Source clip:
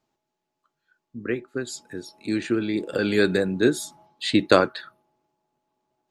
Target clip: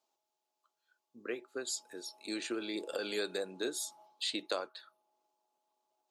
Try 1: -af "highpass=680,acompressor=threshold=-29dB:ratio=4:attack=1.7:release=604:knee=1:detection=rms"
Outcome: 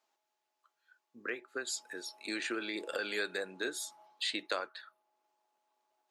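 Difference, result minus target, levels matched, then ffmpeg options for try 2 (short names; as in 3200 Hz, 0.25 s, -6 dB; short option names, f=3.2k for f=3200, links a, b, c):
2000 Hz band +6.0 dB
-af "highpass=680,equalizer=f=1.8k:t=o:w=1.1:g=-11.5,acompressor=threshold=-29dB:ratio=4:attack=1.7:release=604:knee=1:detection=rms"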